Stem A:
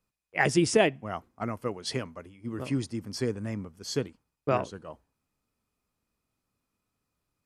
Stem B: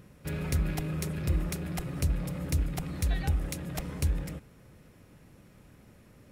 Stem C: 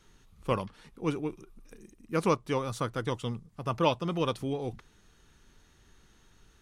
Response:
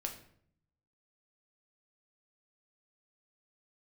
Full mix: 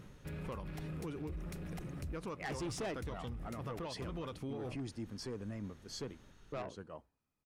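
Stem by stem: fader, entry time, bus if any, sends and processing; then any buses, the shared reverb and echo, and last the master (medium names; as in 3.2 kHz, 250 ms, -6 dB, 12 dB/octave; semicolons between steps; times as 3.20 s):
-6.0 dB, 2.05 s, no bus, no send, none
+0.5 dB, 0.00 s, bus A, no send, auto duck -9 dB, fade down 0.30 s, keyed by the third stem
-1.0 dB, 0.00 s, bus A, no send, none
bus A: 0.0 dB, compression 6:1, threshold -34 dBFS, peak gain reduction 13 dB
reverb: none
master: treble shelf 5.3 kHz -6.5 dB; saturation -30 dBFS, distortion -9 dB; peak limiter -35.5 dBFS, peak gain reduction 5.5 dB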